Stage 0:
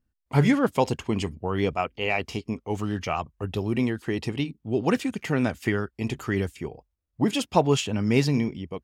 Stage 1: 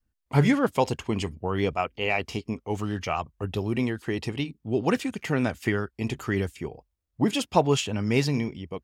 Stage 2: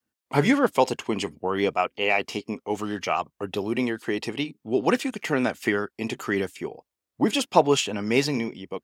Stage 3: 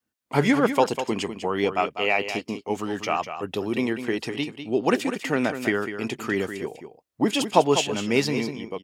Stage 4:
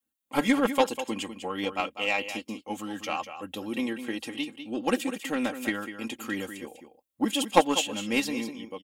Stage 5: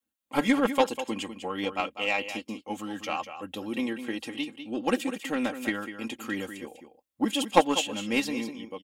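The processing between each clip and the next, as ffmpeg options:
ffmpeg -i in.wav -af "adynamicequalizer=threshold=0.0178:dfrequency=220:dqfactor=0.86:tfrequency=220:tqfactor=0.86:attack=5:release=100:ratio=0.375:range=2:mode=cutabove:tftype=bell" out.wav
ffmpeg -i in.wav -af "highpass=240,volume=3.5dB" out.wav
ffmpeg -i in.wav -af "aecho=1:1:198:0.335" out.wav
ffmpeg -i in.wav -af "aeval=exprs='0.708*(cos(1*acos(clip(val(0)/0.708,-1,1)))-cos(1*PI/2))+0.141*(cos(3*acos(clip(val(0)/0.708,-1,1)))-cos(3*PI/2))':channel_layout=same,aecho=1:1:3.7:0.81,aexciter=amount=1.7:drive=3.5:freq=2800,volume=-1dB" out.wav
ffmpeg -i in.wav -af "highshelf=frequency=7200:gain=-4.5" out.wav

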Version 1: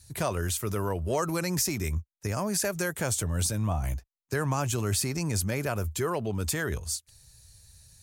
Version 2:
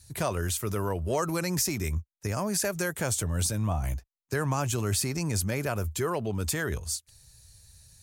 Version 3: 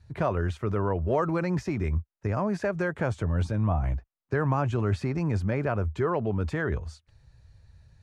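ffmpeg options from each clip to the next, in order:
ffmpeg -i in.wav -af anull out.wav
ffmpeg -i in.wav -af "lowpass=1700,volume=3dB" out.wav

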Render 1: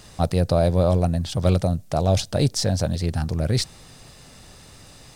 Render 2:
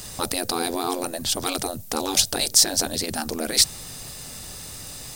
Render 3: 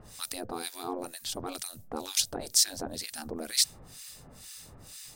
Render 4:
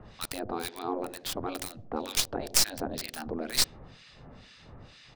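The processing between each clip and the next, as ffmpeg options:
ffmpeg -i in.wav -af "afftfilt=real='re*lt(hypot(re,im),0.251)':imag='im*lt(hypot(re,im),0.251)':win_size=1024:overlap=0.75,aemphasis=mode=production:type=50fm,volume=4.5dB" out.wav
ffmpeg -i in.wav -filter_complex "[0:a]acrossover=split=1400[link_01][link_02];[link_01]aeval=exprs='val(0)*(1-1/2+1/2*cos(2*PI*2.1*n/s))':channel_layout=same[link_03];[link_02]aeval=exprs='val(0)*(1-1/2-1/2*cos(2*PI*2.1*n/s))':channel_layout=same[link_04];[link_03][link_04]amix=inputs=2:normalize=0,volume=-6.5dB" out.wav
ffmpeg -i in.wav -filter_complex "[0:a]acrossover=split=110|760|3900[link_01][link_02][link_03][link_04];[link_02]aecho=1:1:76|152|228|304|380|456:0.282|0.149|0.0792|0.042|0.0222|0.0118[link_05];[link_04]acrusher=bits=3:dc=4:mix=0:aa=0.000001[link_06];[link_01][link_05][link_03][link_06]amix=inputs=4:normalize=0,volume=3dB" out.wav

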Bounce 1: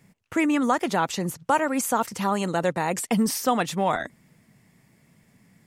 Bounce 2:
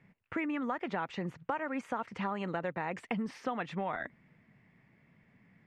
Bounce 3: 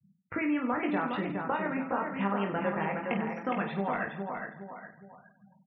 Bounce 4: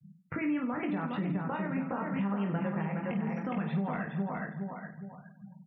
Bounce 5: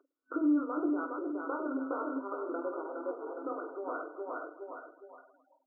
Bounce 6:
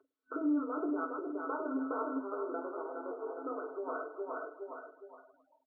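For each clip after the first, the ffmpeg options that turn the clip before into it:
ffmpeg -i in.wav -af "acompressor=threshold=-26dB:ratio=6,lowpass=frequency=2200:width_type=q:width=1.5,volume=-6dB" out.wav
ffmpeg -i in.wav -filter_complex "[0:a]asplit=2[link_01][link_02];[link_02]aecho=0:1:413|826|1239|1652|2065:0.562|0.242|0.104|0.0447|0.0192[link_03];[link_01][link_03]amix=inputs=2:normalize=0,afftfilt=real='re*gte(hypot(re,im),0.00708)':imag='im*gte(hypot(re,im),0.00708)':win_size=1024:overlap=0.75,asplit=2[link_04][link_05];[link_05]aecho=0:1:20|50|95|162.5|263.8:0.631|0.398|0.251|0.158|0.1[link_06];[link_04][link_06]amix=inputs=2:normalize=0,volume=1.5dB" out.wav
ffmpeg -i in.wav -af "equalizer=frequency=160:width=1.4:gain=13.5,alimiter=limit=-24dB:level=0:latency=1:release=267" out.wav
ffmpeg -i in.wav -af "acompressor=mode=upward:threshold=-41dB:ratio=2.5,equalizer=frequency=820:width=2.5:gain=-11.5,afftfilt=real='re*between(b*sr/4096,260,1500)':imag='im*between(b*sr/4096,260,1500)':win_size=4096:overlap=0.75,volume=4.5dB" out.wav
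ffmpeg -i in.wav -af "aecho=1:1:4.6:0.61,volume=-1.5dB" -ar 32000 -c:a ac3 -b:a 48k out.ac3

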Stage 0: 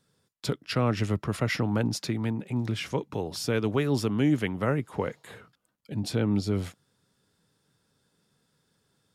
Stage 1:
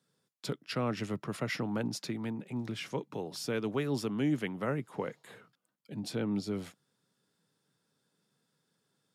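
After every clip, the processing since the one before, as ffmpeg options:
ffmpeg -i in.wav -af "highpass=frequency=130:width=0.5412,highpass=frequency=130:width=1.3066,volume=-6dB" out.wav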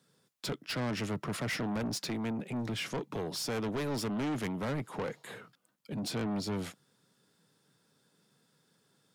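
ffmpeg -i in.wav -af "asoftclip=type=tanh:threshold=-38dB,volume=7dB" out.wav

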